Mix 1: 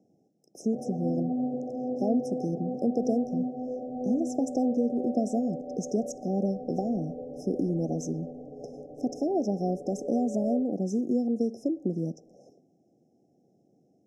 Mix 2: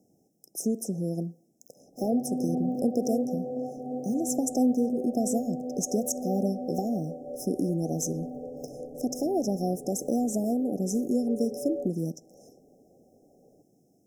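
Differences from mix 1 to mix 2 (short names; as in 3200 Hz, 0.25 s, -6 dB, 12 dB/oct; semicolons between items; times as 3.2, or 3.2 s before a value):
speech: remove BPF 100–3700 Hz; background: entry +1.25 s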